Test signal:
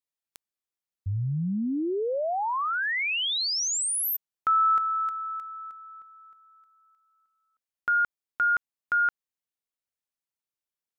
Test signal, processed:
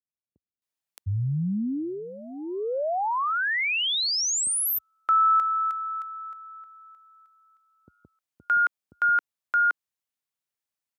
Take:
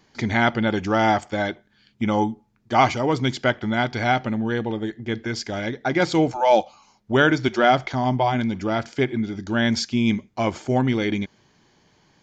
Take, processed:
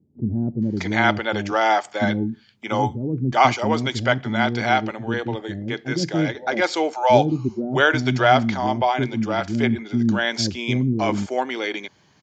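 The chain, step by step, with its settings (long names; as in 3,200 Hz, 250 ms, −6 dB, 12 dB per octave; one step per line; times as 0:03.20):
high-pass filter 64 Hz 24 dB per octave
multiband delay without the direct sound lows, highs 620 ms, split 360 Hz
level +2 dB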